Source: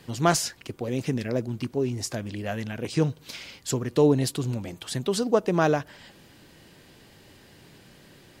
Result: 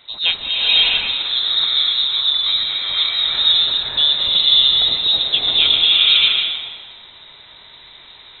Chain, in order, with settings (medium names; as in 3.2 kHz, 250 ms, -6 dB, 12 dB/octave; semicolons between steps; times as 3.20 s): frequency inversion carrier 3.9 kHz; swelling reverb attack 620 ms, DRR -7 dB; trim +2.5 dB